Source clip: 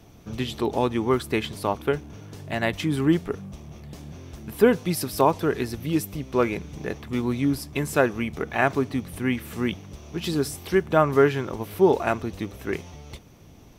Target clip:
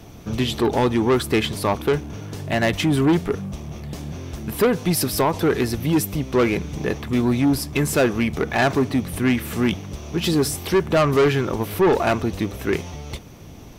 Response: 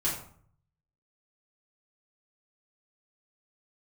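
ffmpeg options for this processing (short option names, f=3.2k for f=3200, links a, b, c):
-filter_complex "[0:a]asettb=1/sr,asplit=3[a][b][c];[a]atrim=end=4.664[d];[b]atrim=start=4.66:end=5.34,asetpts=PTS-STARTPTS,afade=t=in:d=0.004:c=qsin,afade=t=out:st=0.676:d=0.004:c=qsin,acompressor=threshold=-19dB:ratio=6[e];[c]atrim=start=5.336[f];[d][e]acrossfade=d=0.004:c1=hsin:c2=qsin[g];[g][f]acrossfade=d=0.004:c1=qsin:c2=hsin,asoftclip=type=tanh:threshold=-21dB,volume=8.5dB"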